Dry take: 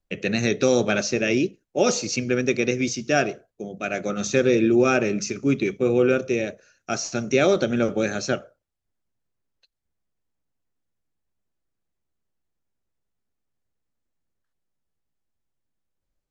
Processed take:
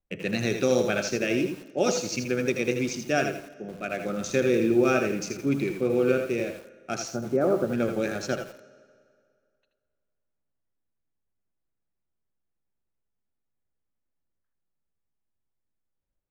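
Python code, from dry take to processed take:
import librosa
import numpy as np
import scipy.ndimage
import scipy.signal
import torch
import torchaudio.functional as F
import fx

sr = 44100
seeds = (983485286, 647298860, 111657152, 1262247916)

y = fx.wiener(x, sr, points=9)
y = fx.cheby2_lowpass(y, sr, hz=3400.0, order=4, stop_db=50, at=(7.12, 7.7))
y = y + 10.0 ** (-8.5 / 20.0) * np.pad(y, (int(79 * sr / 1000.0), 0))[:len(y)]
y = fx.rev_fdn(y, sr, rt60_s=2.2, lf_ratio=0.9, hf_ratio=0.8, size_ms=33.0, drr_db=16.5)
y = fx.echo_crushed(y, sr, ms=85, feedback_pct=35, bits=6, wet_db=-10.0)
y = F.gain(torch.from_numpy(y), -4.5).numpy()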